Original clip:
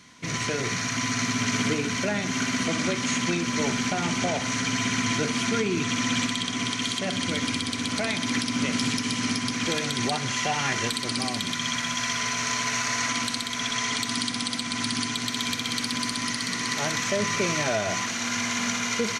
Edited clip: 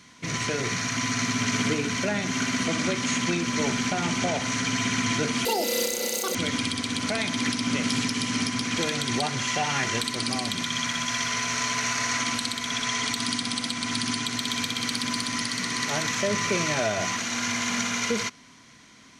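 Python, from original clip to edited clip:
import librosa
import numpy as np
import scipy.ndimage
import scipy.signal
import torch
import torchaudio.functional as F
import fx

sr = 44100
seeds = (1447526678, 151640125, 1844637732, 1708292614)

y = fx.edit(x, sr, fx.speed_span(start_s=5.45, length_s=1.79, speed=1.99), tone=tone)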